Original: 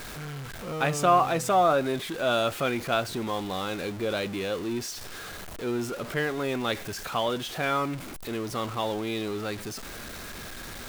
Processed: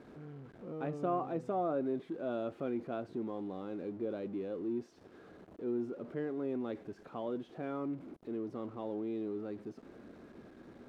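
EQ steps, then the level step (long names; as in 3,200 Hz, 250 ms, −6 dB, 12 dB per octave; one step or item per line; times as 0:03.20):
resonant band-pass 300 Hz, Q 1.5
−4.0 dB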